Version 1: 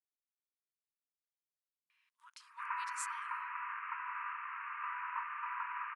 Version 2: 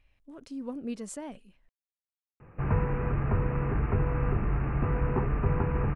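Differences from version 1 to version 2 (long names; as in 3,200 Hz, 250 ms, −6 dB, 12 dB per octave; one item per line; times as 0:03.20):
speech: entry −1.90 s
master: remove linear-phase brick-wall high-pass 910 Hz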